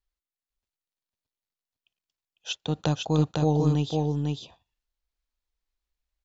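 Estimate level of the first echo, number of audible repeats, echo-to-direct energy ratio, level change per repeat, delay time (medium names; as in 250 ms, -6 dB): -3.0 dB, 1, -3.0 dB, no regular repeats, 501 ms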